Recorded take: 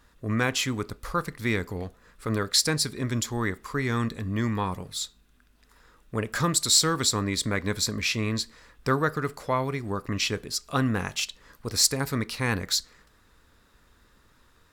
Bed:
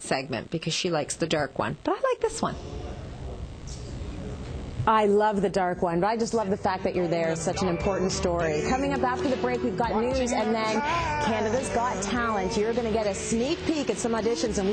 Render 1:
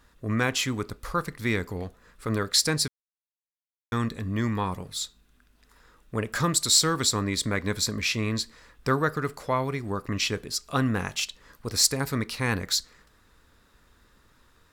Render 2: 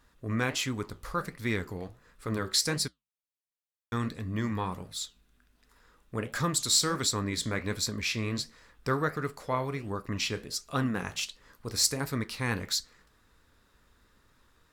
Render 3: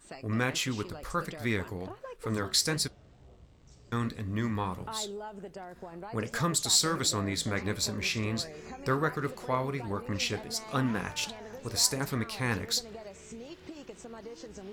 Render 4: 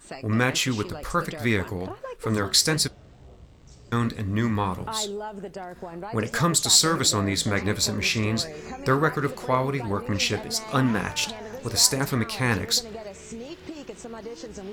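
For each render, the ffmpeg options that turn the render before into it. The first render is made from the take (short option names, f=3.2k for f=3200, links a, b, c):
-filter_complex "[0:a]asplit=3[a][b][c];[a]atrim=end=2.88,asetpts=PTS-STARTPTS,afade=t=out:st=2.876:d=0.004:c=hsin[d];[b]atrim=start=2.88:end=3.92,asetpts=PTS-STARTPTS,volume=0[e];[c]atrim=start=3.92,asetpts=PTS-STARTPTS,afade=t=in:d=0.004:c=hsin[f];[d][e][f]concat=n=3:v=0:a=1"
-af "flanger=delay=7.4:depth=9.9:regen=-72:speed=1.4:shape=sinusoidal"
-filter_complex "[1:a]volume=-19dB[a];[0:a][a]amix=inputs=2:normalize=0"
-af "volume=7dB"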